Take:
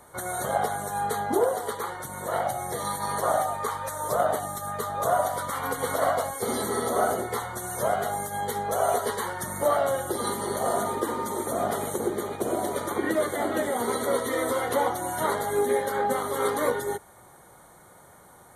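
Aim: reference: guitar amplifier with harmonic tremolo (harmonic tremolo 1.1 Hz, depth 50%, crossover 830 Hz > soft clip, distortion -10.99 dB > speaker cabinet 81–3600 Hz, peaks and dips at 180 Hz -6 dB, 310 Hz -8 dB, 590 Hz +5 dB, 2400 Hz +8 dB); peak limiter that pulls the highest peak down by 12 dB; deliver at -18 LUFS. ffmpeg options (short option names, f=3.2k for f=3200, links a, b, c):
-filter_complex "[0:a]alimiter=limit=-22.5dB:level=0:latency=1,acrossover=split=830[a][b];[a]aeval=exprs='val(0)*(1-0.5/2+0.5/2*cos(2*PI*1.1*n/s))':c=same[c];[b]aeval=exprs='val(0)*(1-0.5/2-0.5/2*cos(2*PI*1.1*n/s))':c=same[d];[c][d]amix=inputs=2:normalize=0,asoftclip=threshold=-34.5dB,highpass=81,equalizer=f=180:t=q:w=4:g=-6,equalizer=f=310:t=q:w=4:g=-8,equalizer=f=590:t=q:w=4:g=5,equalizer=f=2.4k:t=q:w=4:g=8,lowpass=f=3.6k:w=0.5412,lowpass=f=3.6k:w=1.3066,volume=20dB"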